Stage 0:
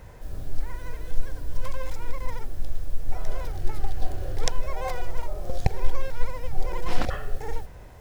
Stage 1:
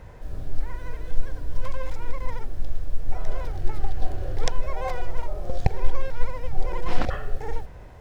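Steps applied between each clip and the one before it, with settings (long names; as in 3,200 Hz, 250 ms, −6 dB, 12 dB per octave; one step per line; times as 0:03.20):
low-pass filter 3,600 Hz 6 dB per octave
level +1.5 dB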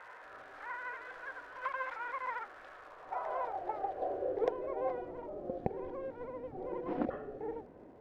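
bass and treble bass −15 dB, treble −10 dB
surface crackle 330 per second −44 dBFS
band-pass filter sweep 1,400 Hz → 260 Hz, 0:02.69–0:05.05
level +8.5 dB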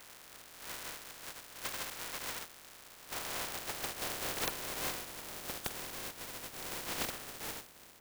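compressing power law on the bin magnitudes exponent 0.15
soft clipping −23 dBFS, distortion −16 dB
level −1.5 dB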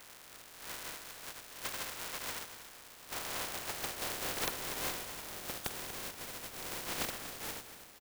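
repeating echo 239 ms, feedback 34%, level −11.5 dB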